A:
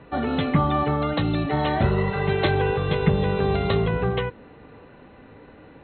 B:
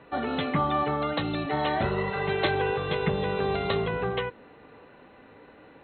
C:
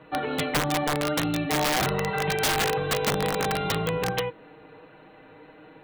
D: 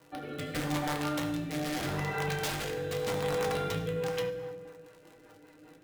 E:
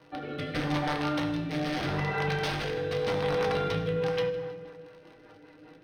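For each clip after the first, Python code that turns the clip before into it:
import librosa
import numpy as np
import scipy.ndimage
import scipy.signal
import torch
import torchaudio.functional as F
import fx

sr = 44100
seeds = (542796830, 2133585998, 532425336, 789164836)

y1 = fx.low_shelf(x, sr, hz=210.0, db=-11.5)
y1 = F.gain(torch.from_numpy(y1), -1.5).numpy()
y2 = y1 + 0.74 * np.pad(y1, (int(6.4 * sr / 1000.0), 0))[:len(y1)]
y2 = (np.mod(10.0 ** (17.5 / 20.0) * y2 + 1.0, 2.0) - 1.0) / 10.0 ** (17.5 / 20.0)
y3 = fx.dmg_crackle(y2, sr, seeds[0], per_s=98.0, level_db=-35.0)
y3 = fx.rev_fdn(y3, sr, rt60_s=1.6, lf_ratio=1.0, hf_ratio=0.6, size_ms=59.0, drr_db=1.0)
y3 = fx.rotary_switch(y3, sr, hz=0.8, then_hz=5.0, switch_at_s=3.73)
y3 = F.gain(torch.from_numpy(y3), -8.5).numpy()
y4 = scipy.signal.savgol_filter(y3, 15, 4, mode='constant')
y4 = fx.echo_feedback(y4, sr, ms=158, feedback_pct=52, wet_db=-18.5)
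y4 = F.gain(torch.from_numpy(y4), 3.0).numpy()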